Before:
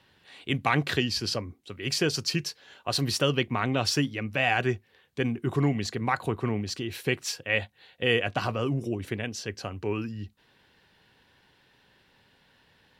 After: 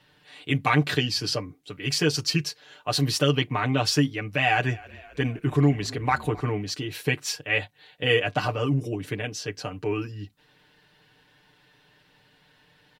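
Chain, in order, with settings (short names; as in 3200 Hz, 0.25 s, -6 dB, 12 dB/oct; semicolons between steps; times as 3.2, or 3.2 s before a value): comb 6.7 ms, depth 85%; 4.27–6.41 frequency-shifting echo 0.262 s, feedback 64%, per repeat -32 Hz, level -22 dB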